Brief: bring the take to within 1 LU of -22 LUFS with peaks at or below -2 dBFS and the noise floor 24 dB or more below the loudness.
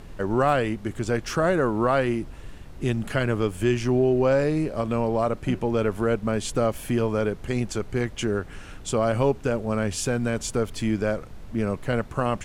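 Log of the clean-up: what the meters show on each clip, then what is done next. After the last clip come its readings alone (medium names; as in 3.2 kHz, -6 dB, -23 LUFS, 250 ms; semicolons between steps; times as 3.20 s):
noise floor -41 dBFS; noise floor target -49 dBFS; loudness -25.0 LUFS; peak level -9.5 dBFS; loudness target -22.0 LUFS
-> noise print and reduce 8 dB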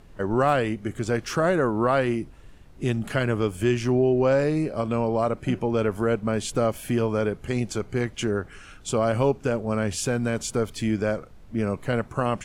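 noise floor -47 dBFS; noise floor target -49 dBFS
-> noise print and reduce 6 dB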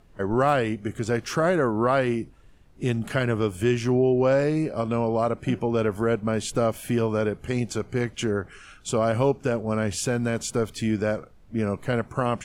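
noise floor -52 dBFS; loudness -25.0 LUFS; peak level -9.5 dBFS; loudness target -22.0 LUFS
-> trim +3 dB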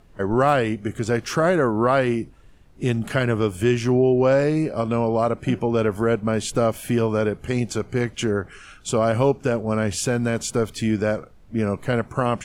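loudness -22.0 LUFS; peak level -6.5 dBFS; noise floor -49 dBFS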